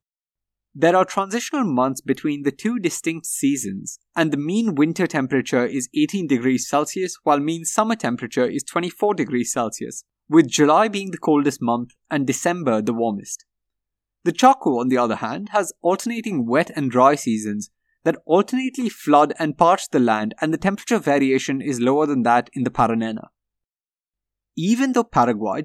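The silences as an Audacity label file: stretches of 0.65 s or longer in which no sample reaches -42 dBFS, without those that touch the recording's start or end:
13.410000	14.250000	silence
23.260000	24.570000	silence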